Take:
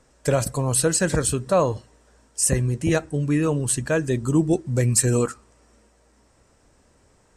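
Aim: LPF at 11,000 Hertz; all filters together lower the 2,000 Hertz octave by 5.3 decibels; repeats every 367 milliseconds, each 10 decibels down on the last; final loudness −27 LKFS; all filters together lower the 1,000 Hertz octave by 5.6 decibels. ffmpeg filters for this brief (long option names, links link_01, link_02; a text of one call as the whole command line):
ffmpeg -i in.wav -af "lowpass=11000,equalizer=frequency=1000:width_type=o:gain=-6.5,equalizer=frequency=2000:width_type=o:gain=-4.5,aecho=1:1:367|734|1101|1468:0.316|0.101|0.0324|0.0104,volume=-4dB" out.wav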